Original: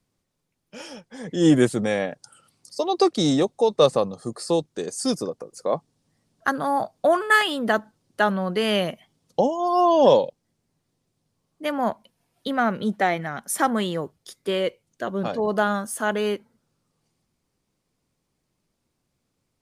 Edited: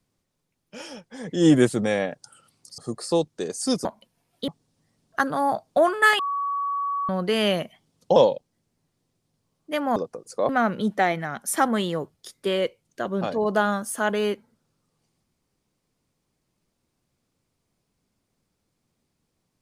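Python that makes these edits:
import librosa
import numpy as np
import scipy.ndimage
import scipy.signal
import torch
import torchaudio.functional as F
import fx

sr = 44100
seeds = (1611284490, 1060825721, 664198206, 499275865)

y = fx.edit(x, sr, fx.cut(start_s=2.78, length_s=1.38),
    fx.swap(start_s=5.23, length_s=0.53, other_s=11.88, other_length_s=0.63),
    fx.bleep(start_s=7.47, length_s=0.9, hz=1130.0, db=-23.5),
    fx.cut(start_s=9.44, length_s=0.64), tone=tone)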